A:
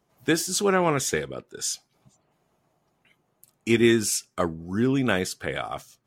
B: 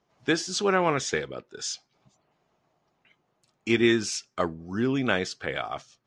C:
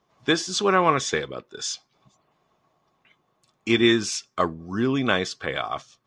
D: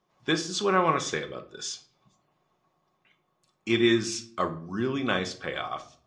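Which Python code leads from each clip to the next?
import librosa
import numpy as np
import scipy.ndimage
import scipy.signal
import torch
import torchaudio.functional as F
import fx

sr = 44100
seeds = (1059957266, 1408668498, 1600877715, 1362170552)

y1 = scipy.signal.sosfilt(scipy.signal.butter(4, 6100.0, 'lowpass', fs=sr, output='sos'), x)
y1 = fx.low_shelf(y1, sr, hz=340.0, db=-5.0)
y2 = fx.small_body(y1, sr, hz=(1100.0, 3500.0), ring_ms=45, db=11)
y2 = y2 * 10.0 ** (2.5 / 20.0)
y3 = fx.room_shoebox(y2, sr, seeds[0], volume_m3=580.0, walls='furnished', distance_m=0.97)
y3 = y3 * 10.0 ** (-5.5 / 20.0)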